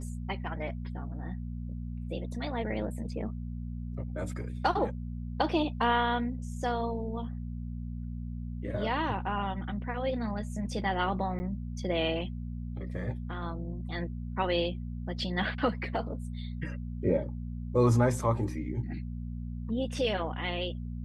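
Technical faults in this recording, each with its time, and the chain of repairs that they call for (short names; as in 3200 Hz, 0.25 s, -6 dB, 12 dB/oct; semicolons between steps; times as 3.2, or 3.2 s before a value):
hum 60 Hz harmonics 4 -37 dBFS
11.39–11.4 gap 10 ms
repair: de-hum 60 Hz, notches 4; interpolate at 11.39, 10 ms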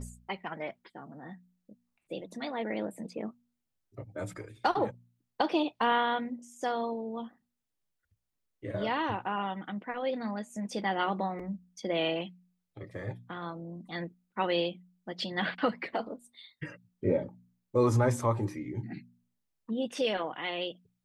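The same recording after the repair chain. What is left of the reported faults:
none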